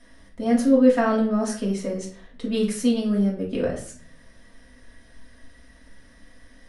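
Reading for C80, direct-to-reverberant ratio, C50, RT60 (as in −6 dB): 12.0 dB, −5.0 dB, 7.5 dB, 0.50 s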